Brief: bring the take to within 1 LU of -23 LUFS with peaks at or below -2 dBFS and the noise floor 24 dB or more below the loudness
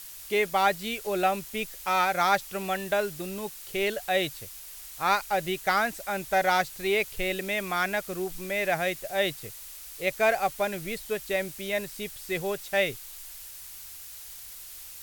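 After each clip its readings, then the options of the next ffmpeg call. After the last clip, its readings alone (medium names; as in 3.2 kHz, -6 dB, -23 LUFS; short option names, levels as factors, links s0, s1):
noise floor -44 dBFS; noise floor target -52 dBFS; loudness -28.0 LUFS; peak level -10.0 dBFS; loudness target -23.0 LUFS
-> -af "afftdn=nr=8:nf=-44"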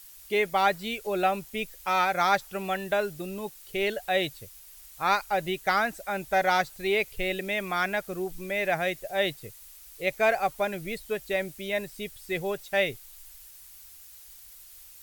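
noise floor -50 dBFS; noise floor target -52 dBFS
-> -af "afftdn=nr=6:nf=-50"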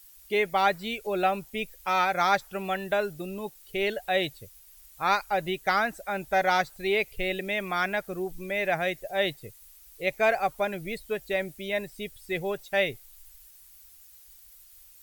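noise floor -53 dBFS; loudness -28.0 LUFS; peak level -10.5 dBFS; loudness target -23.0 LUFS
-> -af "volume=1.78"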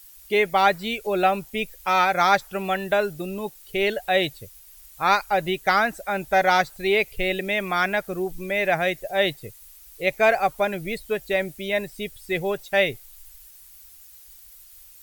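loudness -23.0 LUFS; peak level -5.5 dBFS; noise floor -48 dBFS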